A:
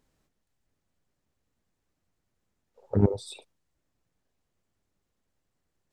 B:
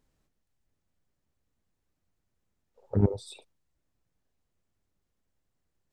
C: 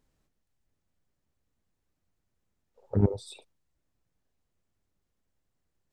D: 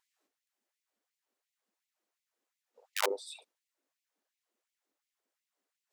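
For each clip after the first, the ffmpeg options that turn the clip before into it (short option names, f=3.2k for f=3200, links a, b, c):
-af "lowshelf=f=120:g=5,volume=-3.5dB"
-af anull
-af "aeval=exprs='(mod(7.94*val(0)+1,2)-1)/7.94':c=same,afftfilt=real='re*gte(b*sr/1024,210*pow(2000/210,0.5+0.5*sin(2*PI*2.8*pts/sr)))':imag='im*gte(b*sr/1024,210*pow(2000/210,0.5+0.5*sin(2*PI*2.8*pts/sr)))':win_size=1024:overlap=0.75"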